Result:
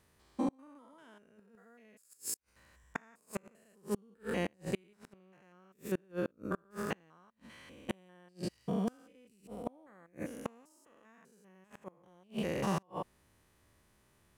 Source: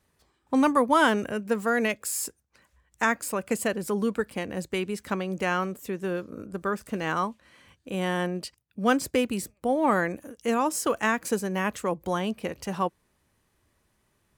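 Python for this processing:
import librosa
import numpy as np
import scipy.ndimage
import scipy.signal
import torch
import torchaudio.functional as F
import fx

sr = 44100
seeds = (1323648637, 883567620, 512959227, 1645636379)

y = fx.spec_steps(x, sr, hold_ms=200)
y = fx.gate_flip(y, sr, shuts_db=-25.0, range_db=-34)
y = y * 10.0 ** (2.5 / 20.0)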